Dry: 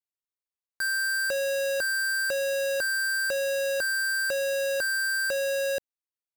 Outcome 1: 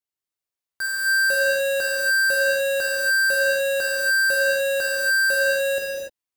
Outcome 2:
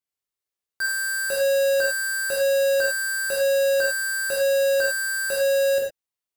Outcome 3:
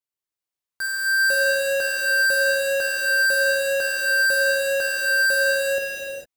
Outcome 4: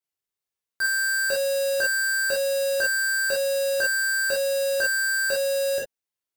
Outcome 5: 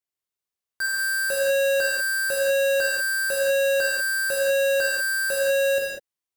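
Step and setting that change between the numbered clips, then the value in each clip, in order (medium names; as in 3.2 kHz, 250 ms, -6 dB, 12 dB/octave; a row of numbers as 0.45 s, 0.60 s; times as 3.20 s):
gated-style reverb, gate: 320 ms, 130 ms, 480 ms, 80 ms, 220 ms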